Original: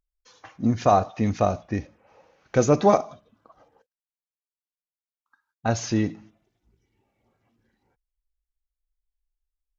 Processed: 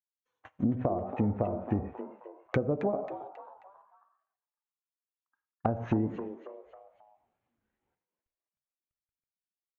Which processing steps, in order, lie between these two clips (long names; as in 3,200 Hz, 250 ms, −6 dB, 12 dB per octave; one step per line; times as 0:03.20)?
mu-law and A-law mismatch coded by A
moving average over 9 samples
automatic gain control gain up to 15 dB
reverb whose tail is shaped and stops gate 130 ms flat, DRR 10 dB
noise gate −45 dBFS, range −18 dB
low-shelf EQ 410 Hz −3.5 dB
downward compressor 12 to 1, threshold −24 dBFS, peak gain reduction 16.5 dB
treble cut that deepens with the level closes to 620 Hz, closed at −26 dBFS
echo with shifted repeats 270 ms, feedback 42%, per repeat +130 Hz, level −12 dB
wow of a warped record 45 rpm, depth 100 cents